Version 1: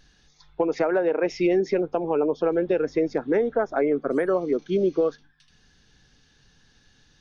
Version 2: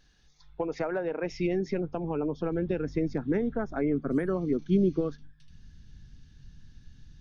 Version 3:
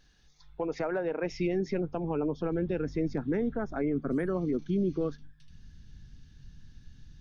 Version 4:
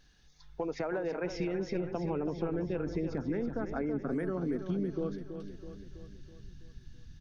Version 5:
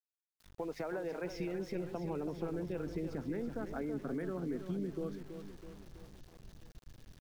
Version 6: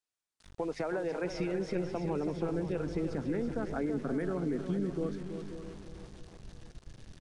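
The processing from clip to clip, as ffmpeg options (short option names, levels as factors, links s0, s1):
-af "asubboost=boost=11.5:cutoff=170,volume=0.473"
-af "alimiter=limit=0.0841:level=0:latency=1:release=17"
-af "acompressor=threshold=0.0316:ratio=6,aecho=1:1:327|654|981|1308|1635|1962:0.355|0.195|0.107|0.059|0.0325|0.0179"
-af "aeval=exprs='val(0)*gte(abs(val(0)),0.00355)':c=same,volume=0.562"
-af "aecho=1:1:540:0.251,aresample=22050,aresample=44100,volume=1.78"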